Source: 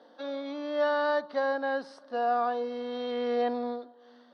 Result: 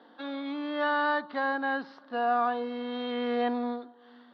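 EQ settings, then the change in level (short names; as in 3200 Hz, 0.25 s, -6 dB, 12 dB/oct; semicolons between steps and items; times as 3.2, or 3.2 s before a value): LPF 3700 Hz 24 dB/oct; bell 560 Hz -11 dB 0.57 oct; +4.5 dB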